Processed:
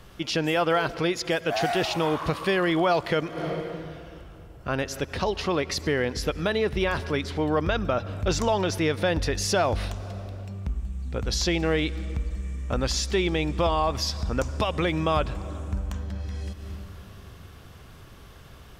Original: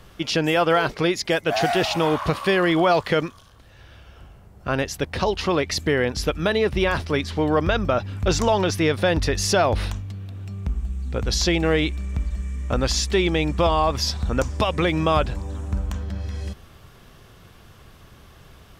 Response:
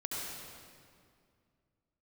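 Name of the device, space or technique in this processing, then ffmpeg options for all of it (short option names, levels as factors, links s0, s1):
ducked reverb: -filter_complex "[0:a]asplit=3[s0][s1][s2];[1:a]atrim=start_sample=2205[s3];[s1][s3]afir=irnorm=-1:irlink=0[s4];[s2]apad=whole_len=828778[s5];[s4][s5]sidechaincompress=threshold=0.00891:ratio=6:attack=9.2:release=148,volume=0.708[s6];[s0][s6]amix=inputs=2:normalize=0,volume=0.596"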